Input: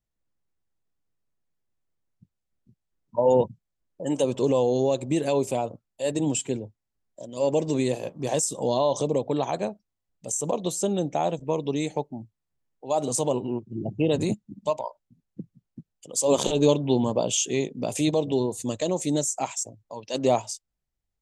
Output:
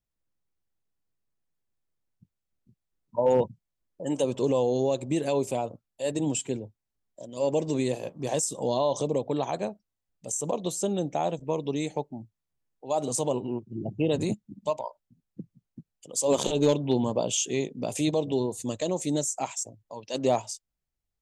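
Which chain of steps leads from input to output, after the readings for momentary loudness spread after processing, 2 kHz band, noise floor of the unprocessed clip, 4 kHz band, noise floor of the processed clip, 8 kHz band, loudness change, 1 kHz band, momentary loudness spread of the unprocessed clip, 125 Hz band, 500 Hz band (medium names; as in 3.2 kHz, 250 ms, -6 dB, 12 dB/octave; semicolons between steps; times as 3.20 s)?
12 LU, -2.5 dB, -83 dBFS, -2.5 dB, -85 dBFS, -2.5 dB, -2.5 dB, -2.5 dB, 12 LU, -2.5 dB, -2.5 dB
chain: overload inside the chain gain 11 dB; trim -2.5 dB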